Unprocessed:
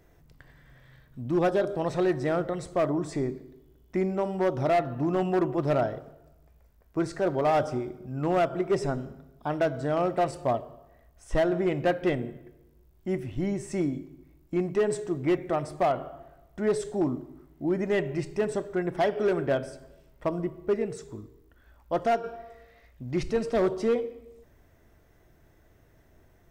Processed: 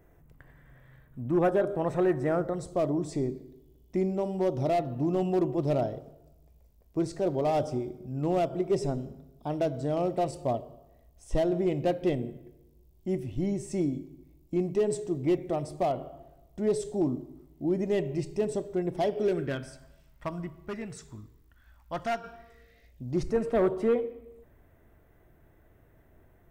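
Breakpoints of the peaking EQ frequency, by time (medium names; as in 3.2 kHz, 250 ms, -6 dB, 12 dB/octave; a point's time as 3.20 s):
peaking EQ -14 dB 1.2 oct
2.22 s 4.6 kHz
2.87 s 1.5 kHz
19.20 s 1.5 kHz
19.73 s 430 Hz
22.28 s 430 Hz
23.04 s 1.5 kHz
23.48 s 5.4 kHz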